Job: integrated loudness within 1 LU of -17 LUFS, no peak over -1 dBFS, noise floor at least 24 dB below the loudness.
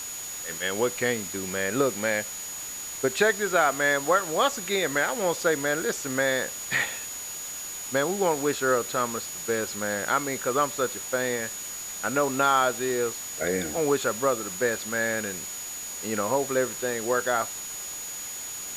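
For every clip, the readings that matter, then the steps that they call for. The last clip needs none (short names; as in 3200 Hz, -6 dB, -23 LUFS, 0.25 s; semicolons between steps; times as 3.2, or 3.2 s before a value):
steady tone 6800 Hz; tone level -35 dBFS; noise floor -36 dBFS; noise floor target -51 dBFS; loudness -26.5 LUFS; peak -8.5 dBFS; loudness target -17.0 LUFS
-> notch 6800 Hz, Q 30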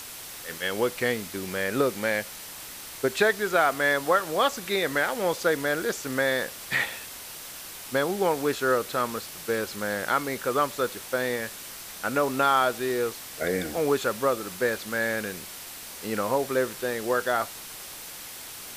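steady tone none; noise floor -41 dBFS; noise floor target -51 dBFS
-> noise print and reduce 10 dB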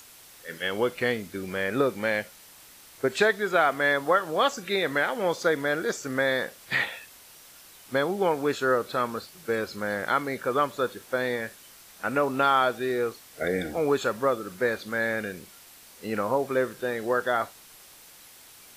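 noise floor -51 dBFS; loudness -27.0 LUFS; peak -8.5 dBFS; loudness target -17.0 LUFS
-> gain +10 dB; limiter -1 dBFS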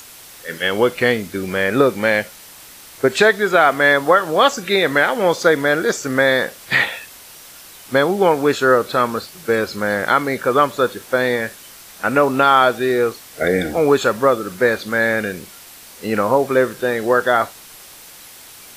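loudness -17.0 LUFS; peak -1.0 dBFS; noise floor -41 dBFS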